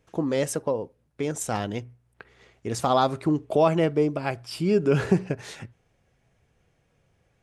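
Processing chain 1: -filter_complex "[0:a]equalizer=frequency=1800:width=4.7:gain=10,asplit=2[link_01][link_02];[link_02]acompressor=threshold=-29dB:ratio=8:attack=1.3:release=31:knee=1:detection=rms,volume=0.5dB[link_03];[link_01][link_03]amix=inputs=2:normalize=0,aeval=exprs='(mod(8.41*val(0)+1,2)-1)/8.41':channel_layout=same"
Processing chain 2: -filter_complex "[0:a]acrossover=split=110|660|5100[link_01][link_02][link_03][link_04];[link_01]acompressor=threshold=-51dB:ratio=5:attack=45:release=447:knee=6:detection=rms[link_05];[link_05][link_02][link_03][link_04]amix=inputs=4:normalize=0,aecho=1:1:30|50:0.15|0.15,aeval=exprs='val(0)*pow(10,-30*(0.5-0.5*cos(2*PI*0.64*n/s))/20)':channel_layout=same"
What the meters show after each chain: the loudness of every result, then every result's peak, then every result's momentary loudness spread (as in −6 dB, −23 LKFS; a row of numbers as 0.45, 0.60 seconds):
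−25.0, −29.0 LKFS; −18.5, −10.0 dBFS; 15, 21 LU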